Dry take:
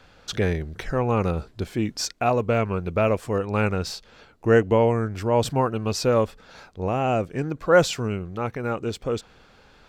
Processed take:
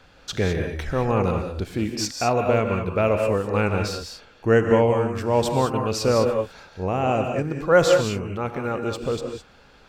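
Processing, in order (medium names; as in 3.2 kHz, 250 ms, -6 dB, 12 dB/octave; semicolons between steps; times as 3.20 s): gated-style reverb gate 230 ms rising, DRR 4 dB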